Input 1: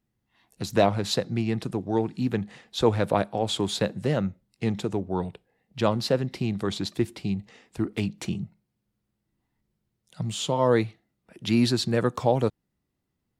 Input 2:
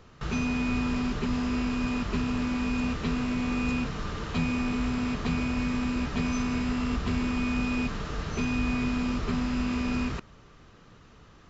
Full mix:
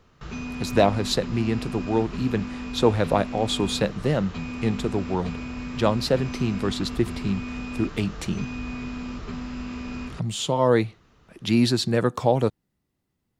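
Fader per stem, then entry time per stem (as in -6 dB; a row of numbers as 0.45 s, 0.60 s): +2.0 dB, -5.0 dB; 0.00 s, 0.00 s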